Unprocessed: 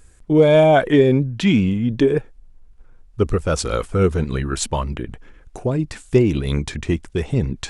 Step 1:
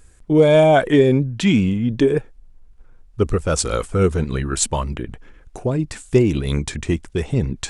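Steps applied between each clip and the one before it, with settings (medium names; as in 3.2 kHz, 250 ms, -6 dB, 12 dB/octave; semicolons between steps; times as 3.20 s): dynamic bell 8.1 kHz, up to +7 dB, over -49 dBFS, Q 1.5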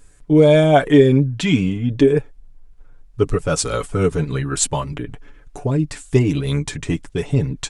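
comb 7 ms, depth 67%; trim -1 dB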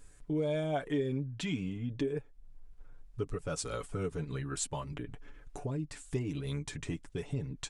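compression 2:1, threshold -34 dBFS, peak gain reduction 15 dB; trim -7 dB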